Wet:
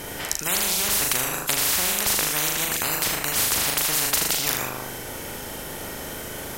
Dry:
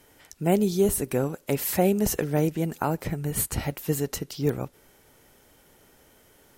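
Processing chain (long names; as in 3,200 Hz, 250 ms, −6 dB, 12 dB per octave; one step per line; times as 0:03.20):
flutter between parallel walls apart 6.7 metres, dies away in 0.5 s
every bin compressed towards the loudest bin 10 to 1
level +6 dB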